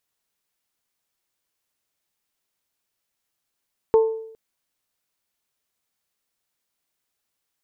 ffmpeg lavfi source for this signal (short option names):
-f lavfi -i "aevalsrc='0.316*pow(10,-3*t/0.72)*sin(2*PI*445*t)+0.0841*pow(10,-3*t/0.443)*sin(2*PI*890*t)+0.0224*pow(10,-3*t/0.39)*sin(2*PI*1068*t)':d=0.41:s=44100"